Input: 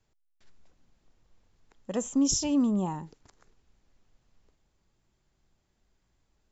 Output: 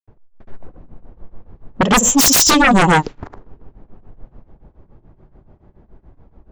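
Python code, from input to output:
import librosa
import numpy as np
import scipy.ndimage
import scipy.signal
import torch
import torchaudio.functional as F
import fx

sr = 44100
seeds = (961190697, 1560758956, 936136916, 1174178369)

y = fx.granulator(x, sr, seeds[0], grain_ms=178.0, per_s=7.0, spray_ms=100.0, spread_st=0)
y = fx.env_lowpass(y, sr, base_hz=760.0, full_db=-29.5)
y = fx.fold_sine(y, sr, drive_db=18, ceiling_db=-16.0)
y = y * 10.0 ** (8.5 / 20.0)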